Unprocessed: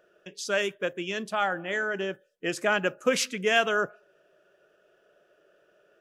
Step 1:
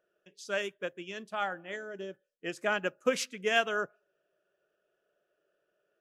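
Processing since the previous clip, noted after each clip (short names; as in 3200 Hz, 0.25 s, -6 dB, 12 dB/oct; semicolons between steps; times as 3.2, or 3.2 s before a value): spectral gain 1.76–2.13, 670–3200 Hz -7 dB; upward expander 1.5:1, over -42 dBFS; gain -3 dB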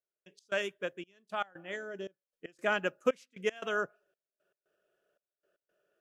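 step gate "..x.xxxx" 116 bpm -24 dB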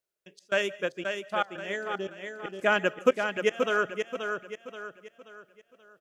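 feedback echo 0.53 s, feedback 39%, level -6 dB; reverb RT60 0.20 s, pre-delay 0.12 s, DRR 21.5 dB; gain +6 dB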